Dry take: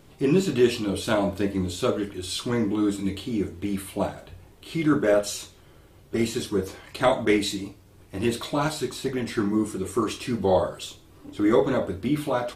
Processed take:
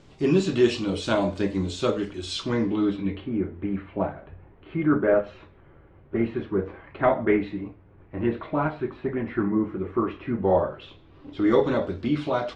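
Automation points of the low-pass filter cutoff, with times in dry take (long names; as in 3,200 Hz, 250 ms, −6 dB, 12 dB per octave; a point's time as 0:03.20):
low-pass filter 24 dB per octave
0:02.28 7,000 Hz
0:02.89 3,900 Hz
0:03.31 2,100 Hz
0:10.58 2,100 Hz
0:11.55 5,400 Hz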